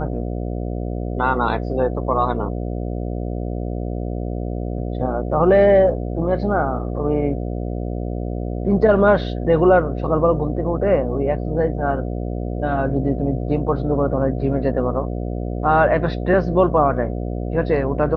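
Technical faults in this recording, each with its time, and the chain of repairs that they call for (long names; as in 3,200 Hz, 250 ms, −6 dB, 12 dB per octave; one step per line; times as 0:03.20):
mains buzz 60 Hz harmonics 12 −25 dBFS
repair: hum removal 60 Hz, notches 12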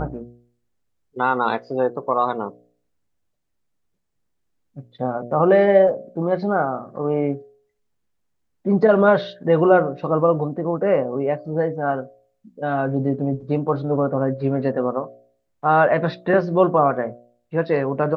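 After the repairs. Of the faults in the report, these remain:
none of them is left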